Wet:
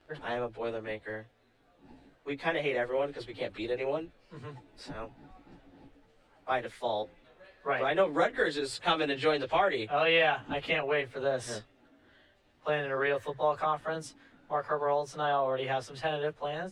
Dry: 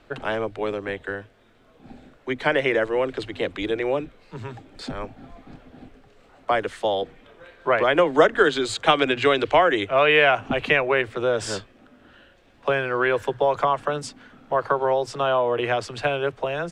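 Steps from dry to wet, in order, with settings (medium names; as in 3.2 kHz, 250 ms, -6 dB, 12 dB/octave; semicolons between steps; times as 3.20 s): frequency-domain pitch shifter +1.5 st; trim -6.5 dB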